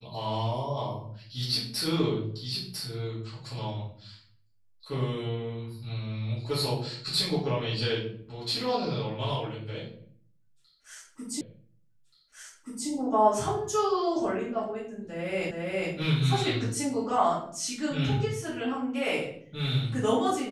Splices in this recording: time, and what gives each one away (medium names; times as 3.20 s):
11.41 s: repeat of the last 1.48 s
15.51 s: repeat of the last 0.41 s